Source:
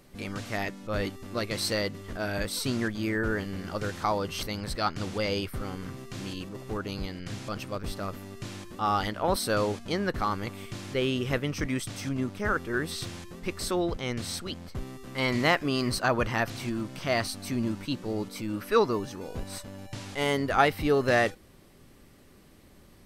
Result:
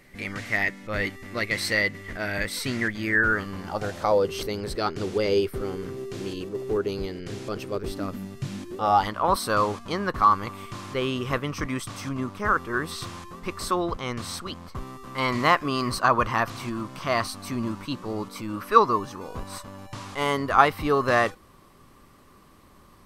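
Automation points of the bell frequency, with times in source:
bell +14.5 dB 0.48 oct
3.02 s 2000 Hz
4.32 s 400 Hz
7.84 s 400 Hz
8.42 s 130 Hz
9.06 s 1100 Hz

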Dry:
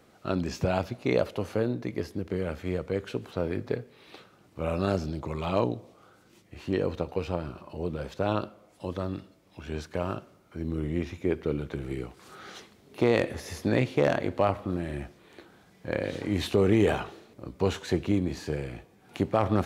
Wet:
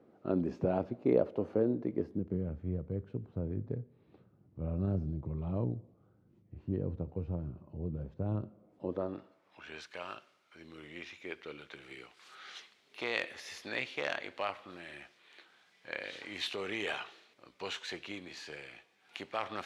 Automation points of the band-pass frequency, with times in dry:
band-pass, Q 0.96
1.91 s 330 Hz
2.53 s 110 Hz
8.43 s 110 Hz
9.09 s 600 Hz
9.89 s 2900 Hz

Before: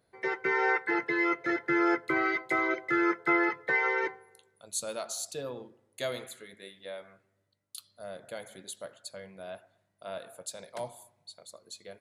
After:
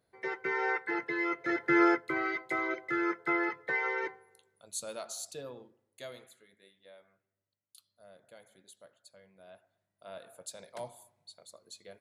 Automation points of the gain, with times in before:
1.33 s -4.5 dB
1.83 s +3 dB
2.04 s -4.5 dB
5.29 s -4.5 dB
6.41 s -14 dB
9.24 s -14 dB
10.46 s -4 dB

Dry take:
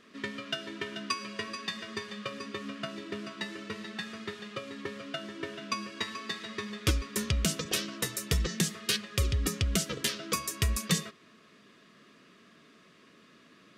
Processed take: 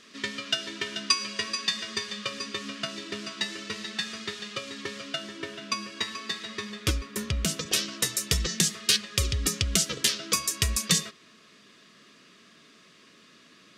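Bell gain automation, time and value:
bell 6000 Hz 2.4 oct
4.99 s +13 dB
5.52 s +6.5 dB
6.66 s +6.5 dB
7.2 s -2 dB
7.88 s +9 dB

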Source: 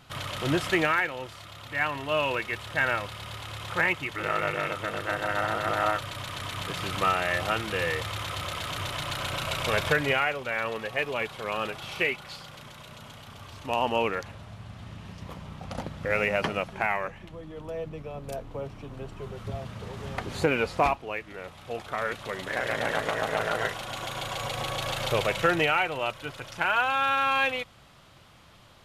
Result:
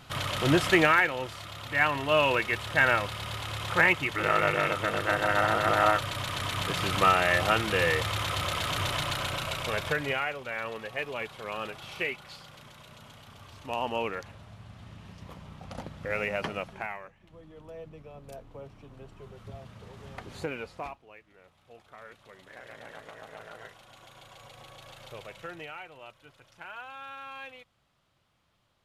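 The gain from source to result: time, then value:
8.94 s +3 dB
9.75 s -5 dB
16.71 s -5 dB
17.17 s -17.5 dB
17.36 s -9 dB
20.38 s -9 dB
21.07 s -18 dB

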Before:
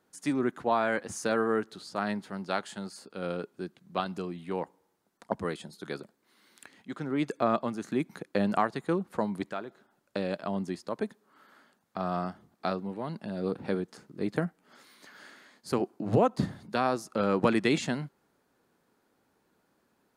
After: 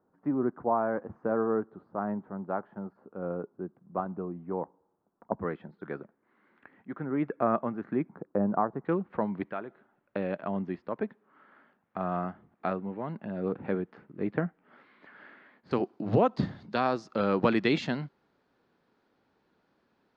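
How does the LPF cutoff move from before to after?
LPF 24 dB/oct
1200 Hz
from 5.41 s 1900 Hz
from 8.09 s 1200 Hz
from 8.85 s 2500 Hz
from 15.71 s 4800 Hz

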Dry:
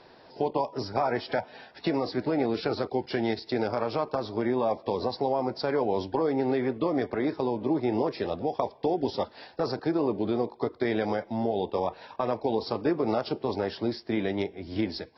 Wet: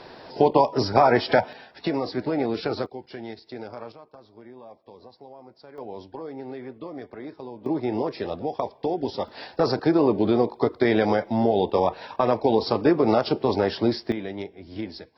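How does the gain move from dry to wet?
+9.5 dB
from 1.53 s +1.5 dB
from 2.86 s -9 dB
from 3.92 s -18.5 dB
from 5.78 s -10 dB
from 7.66 s +0.5 dB
from 9.28 s +7 dB
from 14.12 s -4 dB

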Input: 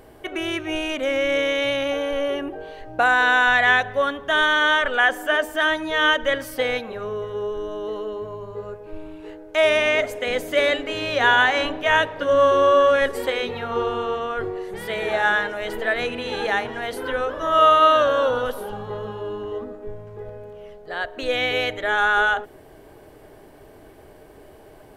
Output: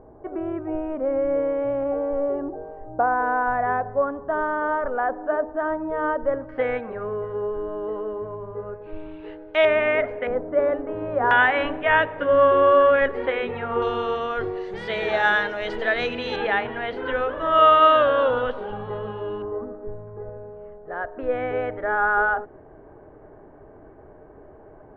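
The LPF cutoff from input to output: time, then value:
LPF 24 dB/oct
1100 Hz
from 6.49 s 1900 Hz
from 8.82 s 3500 Hz
from 9.65 s 2100 Hz
from 10.27 s 1200 Hz
from 11.31 s 2500 Hz
from 13.82 s 5300 Hz
from 16.36 s 3100 Hz
from 19.42 s 1500 Hz

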